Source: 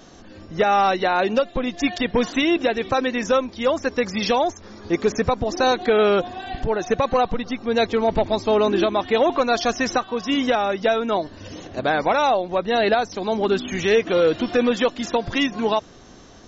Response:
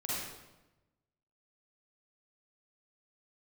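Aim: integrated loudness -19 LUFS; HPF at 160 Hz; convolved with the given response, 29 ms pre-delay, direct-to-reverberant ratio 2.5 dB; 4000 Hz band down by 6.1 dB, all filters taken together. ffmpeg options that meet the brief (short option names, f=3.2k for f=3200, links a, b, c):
-filter_complex "[0:a]highpass=160,equalizer=f=4k:t=o:g=-8,asplit=2[a][b];[1:a]atrim=start_sample=2205,adelay=29[c];[b][c]afir=irnorm=-1:irlink=0,volume=-7dB[d];[a][d]amix=inputs=2:normalize=0,volume=0.5dB"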